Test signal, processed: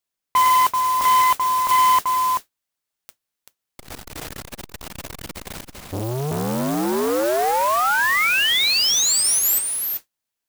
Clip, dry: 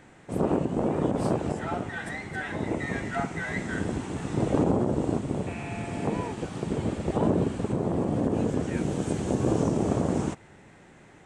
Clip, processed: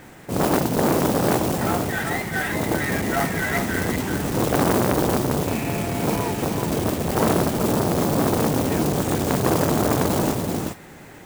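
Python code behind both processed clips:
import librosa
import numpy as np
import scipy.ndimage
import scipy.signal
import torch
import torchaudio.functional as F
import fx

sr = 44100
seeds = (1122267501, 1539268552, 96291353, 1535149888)

y = fx.mod_noise(x, sr, seeds[0], snr_db=12)
y = y + 10.0 ** (-5.5 / 20.0) * np.pad(y, (int(385 * sr / 1000.0), 0))[:len(y)]
y = fx.transformer_sat(y, sr, knee_hz=1200.0)
y = y * 10.0 ** (8.5 / 20.0)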